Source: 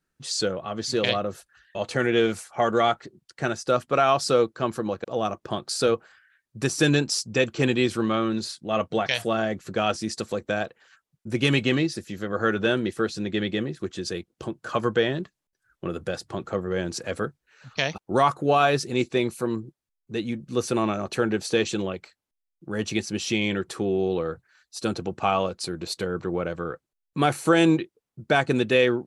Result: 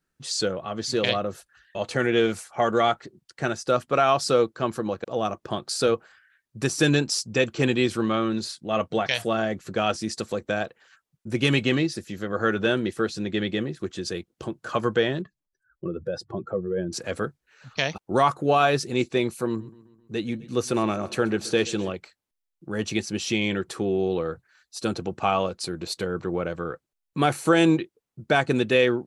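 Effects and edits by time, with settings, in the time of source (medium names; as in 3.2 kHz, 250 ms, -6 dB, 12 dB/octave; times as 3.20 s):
15.22–16.93 s: spectral contrast enhancement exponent 1.8
19.46–21.92 s: feedback delay 131 ms, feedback 56%, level -19.5 dB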